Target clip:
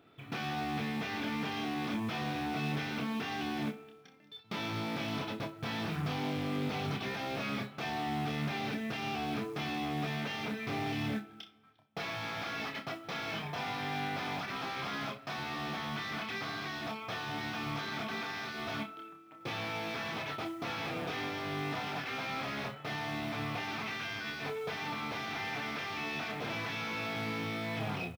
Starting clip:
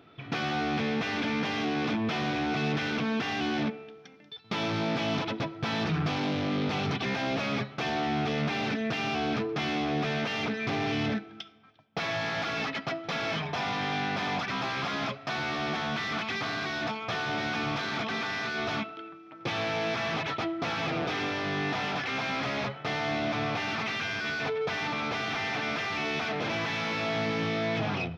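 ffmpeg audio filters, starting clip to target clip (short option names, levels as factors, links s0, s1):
-af "acrusher=bits=6:mode=log:mix=0:aa=0.000001,aecho=1:1:28|62:0.562|0.168,volume=0.422"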